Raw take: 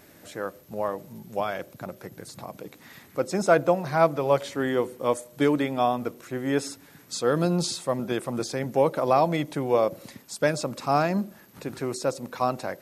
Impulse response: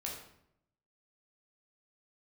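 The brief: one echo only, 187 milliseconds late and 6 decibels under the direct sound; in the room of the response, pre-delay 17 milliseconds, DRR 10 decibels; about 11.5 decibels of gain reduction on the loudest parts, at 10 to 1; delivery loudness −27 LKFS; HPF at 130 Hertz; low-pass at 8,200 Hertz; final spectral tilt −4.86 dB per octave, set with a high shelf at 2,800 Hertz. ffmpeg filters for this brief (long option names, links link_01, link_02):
-filter_complex "[0:a]highpass=130,lowpass=8200,highshelf=frequency=2800:gain=-3.5,acompressor=threshold=-27dB:ratio=10,aecho=1:1:187:0.501,asplit=2[link_01][link_02];[1:a]atrim=start_sample=2205,adelay=17[link_03];[link_02][link_03]afir=irnorm=-1:irlink=0,volume=-10.5dB[link_04];[link_01][link_04]amix=inputs=2:normalize=0,volume=6dB"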